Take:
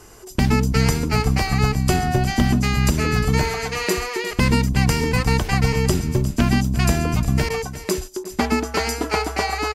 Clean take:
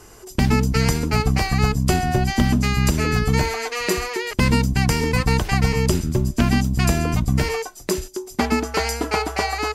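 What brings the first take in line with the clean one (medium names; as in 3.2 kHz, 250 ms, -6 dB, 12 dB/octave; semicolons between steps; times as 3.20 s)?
interpolate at 7.49/8.24 s, 10 ms; inverse comb 355 ms -14 dB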